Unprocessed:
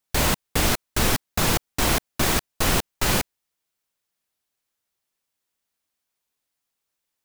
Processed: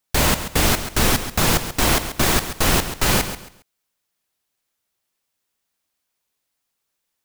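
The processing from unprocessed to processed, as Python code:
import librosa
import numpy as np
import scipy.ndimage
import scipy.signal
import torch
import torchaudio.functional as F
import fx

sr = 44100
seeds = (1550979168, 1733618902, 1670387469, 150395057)

y = fx.echo_feedback(x, sr, ms=136, feedback_pct=26, wet_db=-11)
y = F.gain(torch.from_numpy(y), 3.5).numpy()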